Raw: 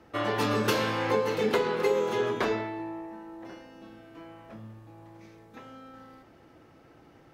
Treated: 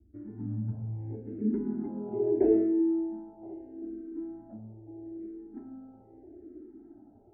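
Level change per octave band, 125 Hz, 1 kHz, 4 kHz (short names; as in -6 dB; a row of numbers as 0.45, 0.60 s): +0.5 dB, -20.0 dB, under -40 dB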